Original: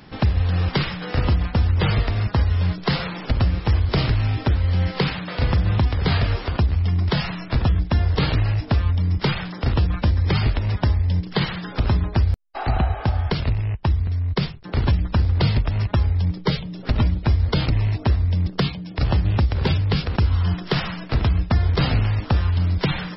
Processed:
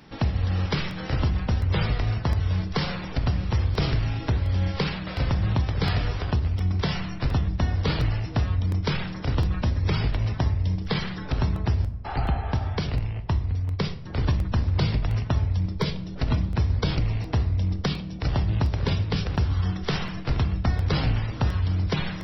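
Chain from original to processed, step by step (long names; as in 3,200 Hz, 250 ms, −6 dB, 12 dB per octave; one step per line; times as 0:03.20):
feedback echo with a low-pass in the loop 397 ms, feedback 68%, low-pass 830 Hz, level −19 dB
convolution reverb RT60 0.75 s, pre-delay 7 ms, DRR 9.5 dB
wrong playback speed 24 fps film run at 25 fps
regular buffer underruns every 0.71 s, samples 64, repeat, from 0:00.91
level −5 dB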